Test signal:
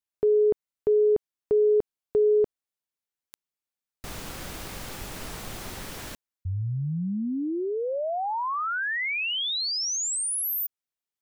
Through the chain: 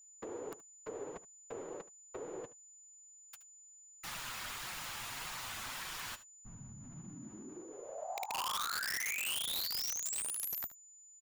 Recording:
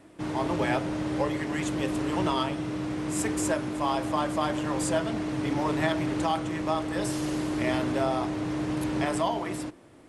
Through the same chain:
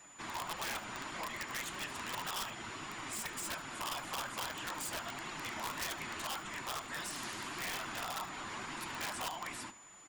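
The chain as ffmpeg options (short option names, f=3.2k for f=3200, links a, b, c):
-filter_complex "[0:a]bandreject=f=810:w=22,afftfilt=real='hypot(re,im)*cos(2*PI*random(0))':imag='hypot(re,im)*sin(2*PI*random(1))':win_size=512:overlap=0.75,lowshelf=f=670:t=q:w=1.5:g=-12,asplit=2[a][b];[b]alimiter=level_in=7.5dB:limit=-24dB:level=0:latency=1:release=165,volume=-7.5dB,volume=1.5dB[c];[a][c]amix=inputs=2:normalize=0,acrossover=split=220|740[d][e][f];[d]acompressor=threshold=-51dB:ratio=4[g];[e]acompressor=threshold=-54dB:ratio=2[h];[f]acompressor=threshold=-46dB:ratio=1.5[i];[g][h][i]amix=inputs=3:normalize=0,flanger=delay=5.3:depth=4.3:regen=-27:speed=1.7:shape=triangular,asoftclip=type=hard:threshold=-31.5dB,equalizer=f=3k:w=0.71:g=3.5,aeval=exprs='val(0)+0.00126*sin(2*PI*7000*n/s)':c=same,aeval=exprs='(mod(44.7*val(0)+1,2)-1)/44.7':c=same,asplit=2[j][k];[k]aecho=0:1:74:0.141[l];[j][l]amix=inputs=2:normalize=0,volume=1dB"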